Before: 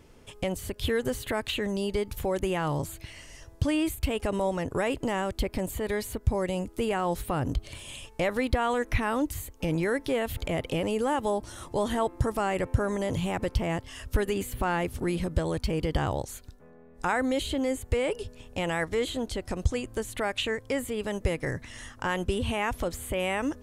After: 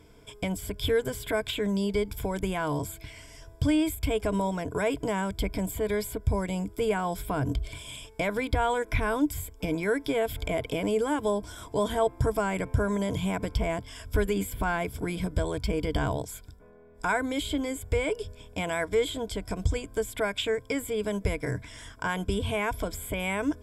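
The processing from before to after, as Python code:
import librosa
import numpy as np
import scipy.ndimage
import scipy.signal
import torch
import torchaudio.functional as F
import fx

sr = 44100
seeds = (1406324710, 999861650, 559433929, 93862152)

y = fx.ripple_eq(x, sr, per_octave=1.7, db=12)
y = y * 10.0 ** (-1.5 / 20.0)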